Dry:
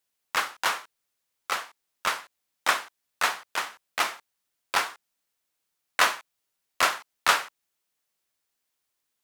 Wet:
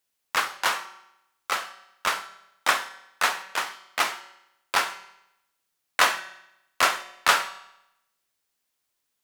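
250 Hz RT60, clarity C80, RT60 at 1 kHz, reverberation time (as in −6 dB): 0.85 s, 16.0 dB, 0.85 s, 0.85 s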